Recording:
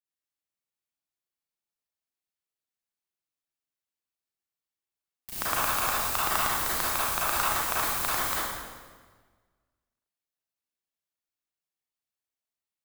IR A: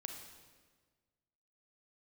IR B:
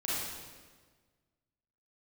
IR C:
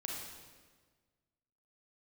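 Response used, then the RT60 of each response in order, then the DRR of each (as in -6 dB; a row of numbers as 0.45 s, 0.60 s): B; 1.5 s, 1.5 s, 1.5 s; 3.5 dB, -8.5 dB, -2.0 dB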